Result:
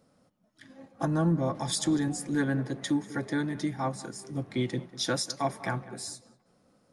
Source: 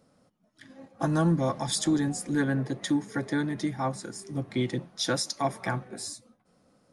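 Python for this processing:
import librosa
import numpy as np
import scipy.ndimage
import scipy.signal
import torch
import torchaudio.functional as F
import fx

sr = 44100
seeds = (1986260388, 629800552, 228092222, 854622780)

y = fx.high_shelf(x, sr, hz=2000.0, db=-9.0, at=(1.05, 1.55))
y = fx.echo_filtered(y, sr, ms=195, feedback_pct=35, hz=2100.0, wet_db=-17.0)
y = y * librosa.db_to_amplitude(-1.5)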